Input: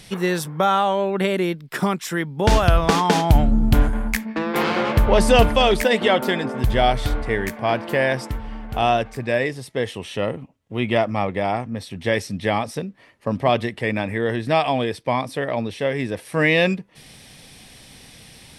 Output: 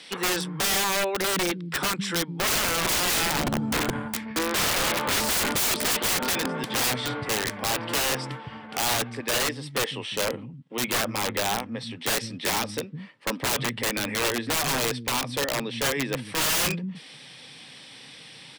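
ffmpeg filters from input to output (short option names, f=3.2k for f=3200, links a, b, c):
-filter_complex "[0:a]highpass=f=150:w=0.5412,highpass=f=150:w=1.3066,equalizer=f=200:t=q:w=4:g=-7,equalizer=f=380:t=q:w=4:g=-6,equalizer=f=670:t=q:w=4:g=-8,equalizer=f=3.3k:t=q:w=4:g=3,equalizer=f=6.6k:t=q:w=4:g=-10,lowpass=f=8.1k:w=0.5412,lowpass=f=8.1k:w=1.3066,acrossover=split=210[a][b];[a]adelay=160[c];[c][b]amix=inputs=2:normalize=0,aeval=exprs='(mod(10.6*val(0)+1,2)-1)/10.6':c=same,volume=1.5dB"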